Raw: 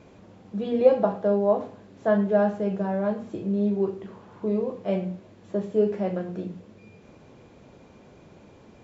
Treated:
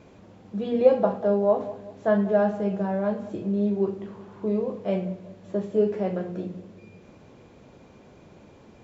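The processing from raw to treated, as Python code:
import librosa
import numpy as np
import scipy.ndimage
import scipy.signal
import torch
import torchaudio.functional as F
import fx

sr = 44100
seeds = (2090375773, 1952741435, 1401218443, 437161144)

y = fx.echo_filtered(x, sr, ms=190, feedback_pct=47, hz=1200.0, wet_db=-15.0)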